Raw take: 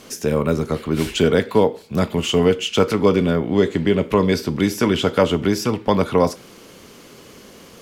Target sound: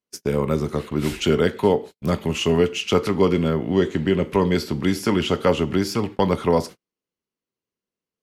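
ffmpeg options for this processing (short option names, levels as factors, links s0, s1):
-af "agate=range=0.00562:threshold=0.0355:ratio=16:detection=peak,asetrate=41895,aresample=44100,volume=0.75"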